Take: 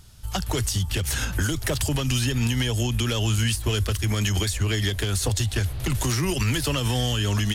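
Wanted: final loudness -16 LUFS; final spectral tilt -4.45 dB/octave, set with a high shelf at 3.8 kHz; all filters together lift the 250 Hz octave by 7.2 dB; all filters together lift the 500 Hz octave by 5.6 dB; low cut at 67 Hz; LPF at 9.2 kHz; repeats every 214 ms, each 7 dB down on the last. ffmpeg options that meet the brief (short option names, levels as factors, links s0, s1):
-af "highpass=67,lowpass=9200,equalizer=f=250:t=o:g=8,equalizer=f=500:t=o:g=4,highshelf=f=3800:g=5.5,aecho=1:1:214|428|642|856|1070:0.447|0.201|0.0905|0.0407|0.0183,volume=1.68"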